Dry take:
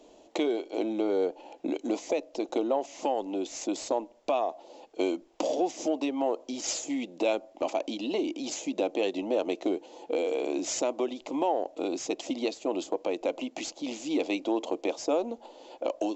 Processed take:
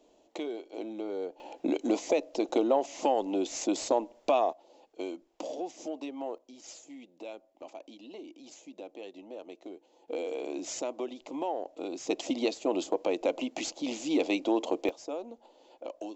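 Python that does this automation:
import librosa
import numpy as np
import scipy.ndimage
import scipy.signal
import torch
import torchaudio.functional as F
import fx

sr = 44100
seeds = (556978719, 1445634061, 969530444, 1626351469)

y = fx.gain(x, sr, db=fx.steps((0.0, -8.5), (1.4, 2.0), (4.53, -9.0), (6.38, -16.0), (10.08, -6.0), (12.07, 1.0), (14.89, -10.0)))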